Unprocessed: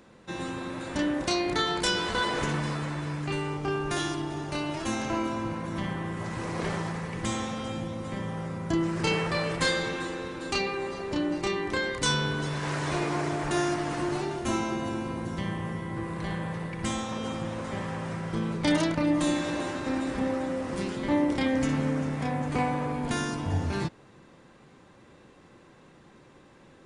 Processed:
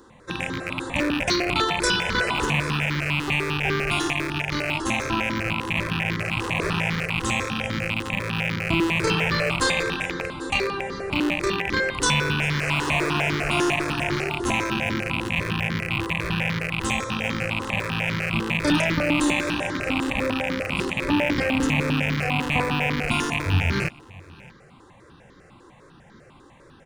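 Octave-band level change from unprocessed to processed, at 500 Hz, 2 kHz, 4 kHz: +3.5 dB, +10.5 dB, +7.0 dB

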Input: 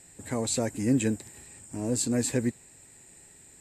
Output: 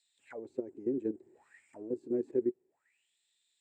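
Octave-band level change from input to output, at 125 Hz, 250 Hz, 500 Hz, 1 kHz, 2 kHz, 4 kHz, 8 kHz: -22.5 dB, -8.5 dB, -2.5 dB, under -15 dB, under -15 dB, under -30 dB, under -40 dB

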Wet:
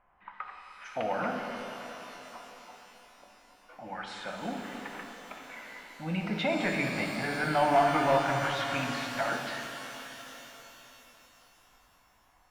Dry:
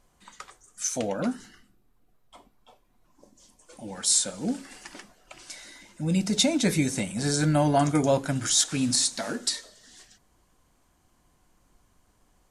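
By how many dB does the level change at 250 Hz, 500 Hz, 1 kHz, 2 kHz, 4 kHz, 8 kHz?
-8.0 dB, -1.5 dB, +4.0 dB, +4.5 dB, -9.5 dB, -21.5 dB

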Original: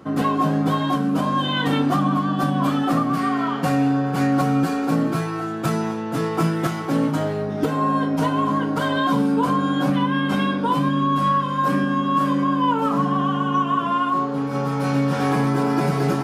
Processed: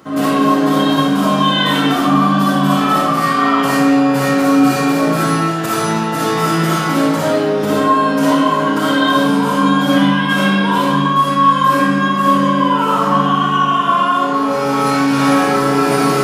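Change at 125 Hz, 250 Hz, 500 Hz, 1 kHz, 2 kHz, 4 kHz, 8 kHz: +2.5 dB, +6.5 dB, +8.5 dB, +8.0 dB, +10.5 dB, +11.0 dB, +13.0 dB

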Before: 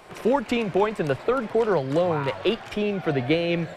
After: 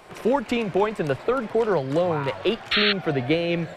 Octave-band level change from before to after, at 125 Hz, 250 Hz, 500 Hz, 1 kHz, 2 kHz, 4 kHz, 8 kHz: 0.0 dB, 0.0 dB, 0.0 dB, +0.5 dB, +4.0 dB, +8.0 dB, no reading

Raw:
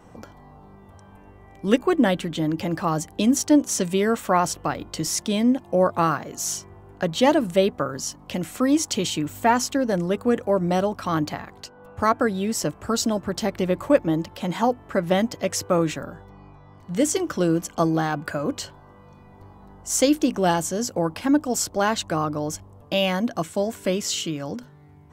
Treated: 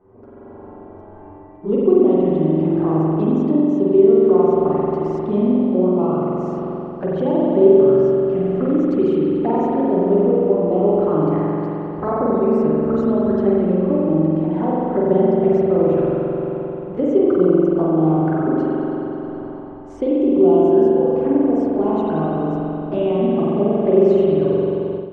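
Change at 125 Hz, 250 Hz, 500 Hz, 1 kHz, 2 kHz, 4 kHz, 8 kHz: +6.0 dB, +6.5 dB, +9.5 dB, 0.0 dB, no reading, under -15 dB, under -35 dB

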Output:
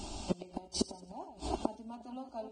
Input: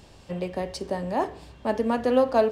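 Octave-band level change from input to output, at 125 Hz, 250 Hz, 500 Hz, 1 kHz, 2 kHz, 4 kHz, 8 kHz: -8.0 dB, -10.5 dB, -18.5 dB, -14.0 dB, -20.5 dB, -2.5 dB, +3.5 dB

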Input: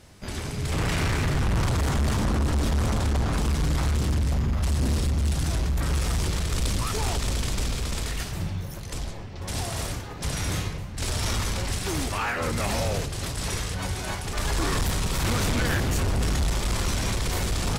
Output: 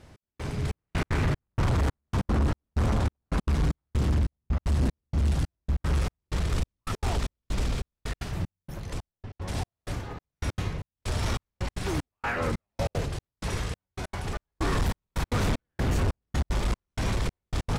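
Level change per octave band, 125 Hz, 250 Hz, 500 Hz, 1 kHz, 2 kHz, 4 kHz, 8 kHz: -3.0 dB, -3.0 dB, -3.0 dB, -3.5 dB, -5.0 dB, -8.5 dB, -11.5 dB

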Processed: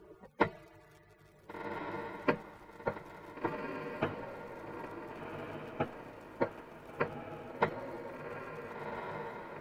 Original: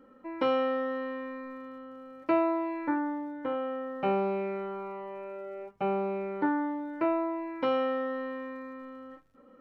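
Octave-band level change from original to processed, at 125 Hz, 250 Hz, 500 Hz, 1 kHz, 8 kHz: +1.0 dB, -10.5 dB, -9.0 dB, -6.5 dB, no reading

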